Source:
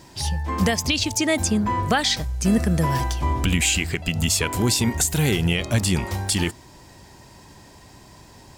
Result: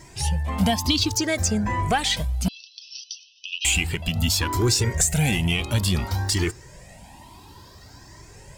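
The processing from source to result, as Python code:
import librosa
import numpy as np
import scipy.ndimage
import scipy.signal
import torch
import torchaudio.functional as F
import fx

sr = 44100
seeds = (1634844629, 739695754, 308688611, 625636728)

p1 = fx.spec_ripple(x, sr, per_octave=0.53, drift_hz=0.6, depth_db=8)
p2 = 10.0 ** (-20.0 / 20.0) * np.tanh(p1 / 10.0 ** (-20.0 / 20.0))
p3 = p1 + (p2 * librosa.db_to_amplitude(-4.0))
p4 = fx.brickwall_bandpass(p3, sr, low_hz=2500.0, high_hz=6100.0, at=(2.48, 3.65))
y = fx.comb_cascade(p4, sr, direction='rising', hz=1.1)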